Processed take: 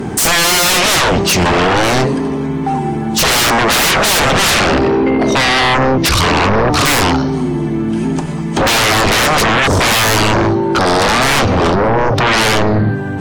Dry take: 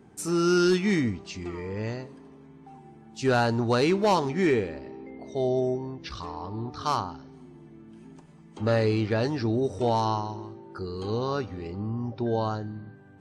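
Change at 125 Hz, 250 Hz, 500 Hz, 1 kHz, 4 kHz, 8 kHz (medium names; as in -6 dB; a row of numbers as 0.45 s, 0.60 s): +14.0 dB, +13.0 dB, +12.5 dB, +17.5 dB, +25.0 dB, +27.0 dB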